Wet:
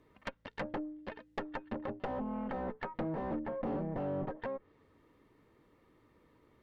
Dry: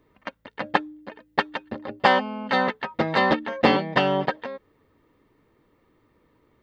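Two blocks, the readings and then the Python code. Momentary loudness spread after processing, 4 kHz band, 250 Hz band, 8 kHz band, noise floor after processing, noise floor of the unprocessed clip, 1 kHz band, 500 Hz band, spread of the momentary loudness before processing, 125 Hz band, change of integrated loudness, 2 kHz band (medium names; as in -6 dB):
8 LU, -26.0 dB, -10.5 dB, no reading, -68 dBFS, -65 dBFS, -18.5 dB, -13.5 dB, 18 LU, -9.5 dB, -16.0 dB, -22.0 dB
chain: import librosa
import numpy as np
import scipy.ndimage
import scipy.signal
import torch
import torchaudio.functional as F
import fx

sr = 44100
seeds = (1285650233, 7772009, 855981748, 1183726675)

y = fx.tube_stage(x, sr, drive_db=31.0, bias=0.6)
y = fx.env_lowpass_down(y, sr, base_hz=640.0, full_db=-32.0)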